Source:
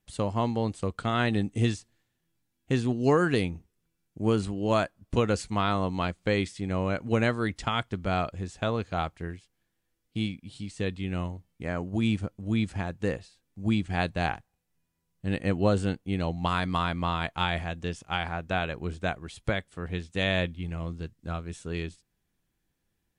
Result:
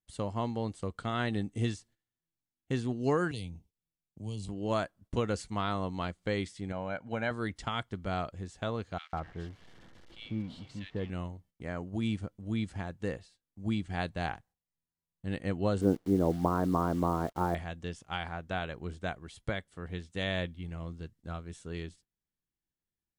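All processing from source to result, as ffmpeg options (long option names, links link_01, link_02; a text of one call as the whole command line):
ffmpeg -i in.wav -filter_complex "[0:a]asettb=1/sr,asplit=3[link_01][link_02][link_03];[link_01]atrim=end=3.314[link_04];[link_02]atrim=start=3.31:end=4.49,asetpts=PTS-STARTPTS,afade=type=in:duration=0.004:curve=qsin,afade=type=out:start_time=1.176:duration=0.004:curve=qsin,equalizer=frequency=370:width=2.1:gain=-5.5,acrossover=split=140|3000[link_05][link_06][link_07];[link_06]acompressor=threshold=-41dB:ratio=2.5:attack=3.2:release=140:knee=2.83:detection=peak[link_08];[link_05][link_08][link_07]amix=inputs=3:normalize=0,asuperstop=centerf=1500:order=4:qfactor=1.1[link_09];[link_03]atrim=start=4.486[link_10];[link_04][link_09]acrossfade=duration=0.004:curve1=hsin:curve2=qsin[link_11];[link_11][link_10]acrossfade=duration=0.004:curve1=qsin:curve2=hsin,asettb=1/sr,asplit=3[link_12][link_13][link_14];[link_12]atrim=end=6.724[link_15];[link_13]atrim=start=6.72:end=7.31,asetpts=PTS-STARTPTS,afade=type=in:duration=0.004:curve=qsin,afade=type=out:start_time=0.586:duration=0.004:curve=qsin,highpass=frequency=350:poles=1,aemphasis=mode=reproduction:type=75fm,aecho=1:1:1.3:0.55,atrim=end_sample=26019[link_16];[link_14]atrim=start=7.306[link_17];[link_15][link_16]acrossfade=duration=0.004:curve1=hsin:curve2=qsin[link_18];[link_18][link_17]acrossfade=duration=0.004:curve1=qsin:curve2=hsin,asettb=1/sr,asplit=3[link_19][link_20][link_21];[link_19]atrim=end=8.984[link_22];[link_20]atrim=start=8.98:end=11.1,asetpts=PTS-STARTPTS,afade=type=in:duration=0.004:curve=qsin,afade=type=out:start_time=2.116:duration=0.004:curve=qsin,aeval=exprs='val(0)+0.5*0.00944*sgn(val(0))':channel_layout=same,lowpass=3600,acrossover=split=1800[link_23][link_24];[link_23]adelay=150[link_25];[link_25][link_24]amix=inputs=2:normalize=0,atrim=end_sample=93492[link_26];[link_21]atrim=start=11.096[link_27];[link_22][link_26]acrossfade=duration=0.004:curve1=hsin:curve2=qsin[link_28];[link_28][link_27]acrossfade=duration=0.004:curve1=qsin:curve2=hsin,asettb=1/sr,asplit=3[link_29][link_30][link_31];[link_29]atrim=end=15.814[link_32];[link_30]atrim=start=15.81:end=17.55,asetpts=PTS-STARTPTS,afade=type=in:duration=0.004:curve=qsin,afade=type=out:start_time=1.736:duration=0.004:curve=qsin,lowpass=frequency=1300:width=0.5412,lowpass=frequency=1300:width=1.3066,equalizer=frequency=360:width=0.75:gain=14,acrusher=bits=8:dc=4:mix=0:aa=0.000001[link_33];[link_31]atrim=start=17.546[link_34];[link_32][link_33]acrossfade=duration=0.004:curve1=hsin:curve2=qsin[link_35];[link_35][link_34]acrossfade=duration=0.004:curve1=qsin:curve2=hsin,bandreject=frequency=2500:width=14,agate=range=-11dB:threshold=-53dB:ratio=16:detection=peak,volume=-6dB" out.wav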